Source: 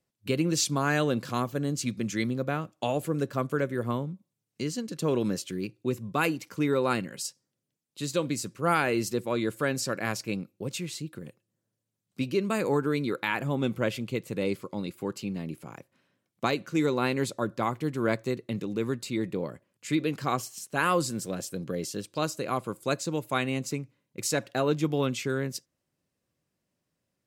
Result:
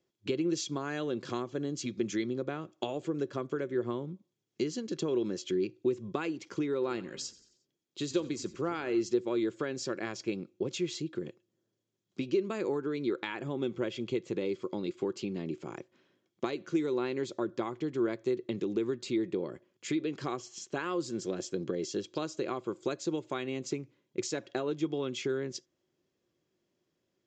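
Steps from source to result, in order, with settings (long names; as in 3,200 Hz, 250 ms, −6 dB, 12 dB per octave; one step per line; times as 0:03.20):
low-shelf EQ 120 Hz −7 dB
downward compressor, threshold −34 dBFS, peak gain reduction 13.5 dB
hollow resonant body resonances 360/3,300 Hz, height 13 dB, ringing for 45 ms
0:06.73–0:09.01: echo with shifted repeats 89 ms, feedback 50%, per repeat −32 Hz, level −18.5 dB
downsampling to 16,000 Hz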